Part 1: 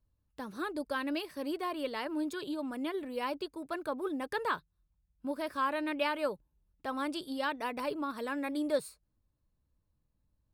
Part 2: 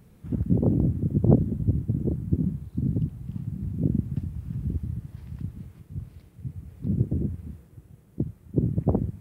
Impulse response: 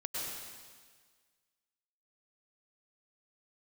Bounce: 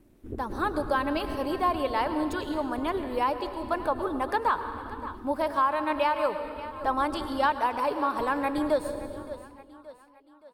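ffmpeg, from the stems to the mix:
-filter_complex "[0:a]agate=range=-33dB:threshold=-59dB:ratio=3:detection=peak,equalizer=f=890:t=o:w=1.2:g=11.5,volume=1dB,asplit=4[a][b][c][d];[b]volume=-9.5dB[e];[c]volume=-15.5dB[f];[1:a]acompressor=threshold=-29dB:ratio=2,aeval=exprs='val(0)*sin(2*PI*160*n/s)':c=same,volume=-4.5dB,asplit=2[g][h];[h]volume=-6dB[i];[d]apad=whole_len=405927[j];[g][j]sidechaincompress=threshold=-39dB:ratio=8:attack=16:release=541[k];[2:a]atrim=start_sample=2205[l];[e][i]amix=inputs=2:normalize=0[m];[m][l]afir=irnorm=-1:irlink=0[n];[f]aecho=0:1:572|1144|1716|2288|2860|3432|4004:1|0.48|0.23|0.111|0.0531|0.0255|0.0122[o];[a][k][n][o]amix=inputs=4:normalize=0,alimiter=limit=-15dB:level=0:latency=1:release=454"

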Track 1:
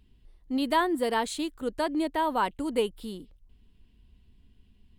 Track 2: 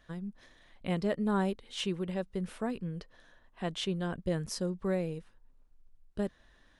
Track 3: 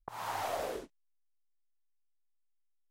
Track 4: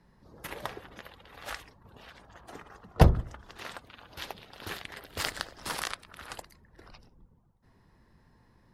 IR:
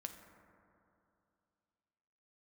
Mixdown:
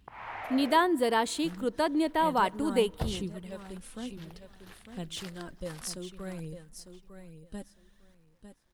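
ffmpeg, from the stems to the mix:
-filter_complex "[0:a]highpass=52,volume=0dB,asplit=2[a][b];[b]volume=-16.5dB[c];[1:a]lowshelf=f=170:g=7.5,aphaser=in_gain=1:out_gain=1:delay=3.9:decay=0.51:speed=0.57:type=sinusoidal,aemphasis=mode=production:type=75fm,adelay=1350,volume=-10dB,asplit=3[d][e][f];[e]volume=-20dB[g];[f]volume=-9.5dB[h];[2:a]lowpass=f=2.2k:t=q:w=3.1,volume=-5.5dB[i];[3:a]acrusher=bits=9:mix=0:aa=0.000001,volume=-15dB[j];[4:a]atrim=start_sample=2205[k];[c][g]amix=inputs=2:normalize=0[l];[l][k]afir=irnorm=-1:irlink=0[m];[h]aecho=0:1:902|1804|2706:1|0.17|0.0289[n];[a][d][i][j][m][n]amix=inputs=6:normalize=0"

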